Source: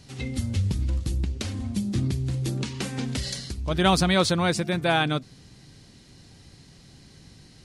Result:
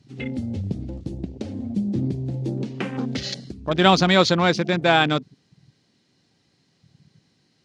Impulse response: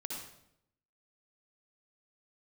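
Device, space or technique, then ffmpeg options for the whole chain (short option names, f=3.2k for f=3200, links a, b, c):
over-cleaned archive recording: -af "highpass=170,lowpass=6.3k,afwtdn=0.0126,volume=5.5dB"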